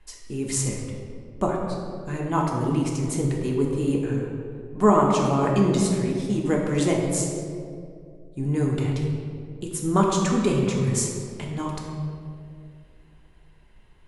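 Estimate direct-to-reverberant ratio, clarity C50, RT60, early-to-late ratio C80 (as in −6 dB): −2.0 dB, 2.0 dB, 2.4 s, 3.5 dB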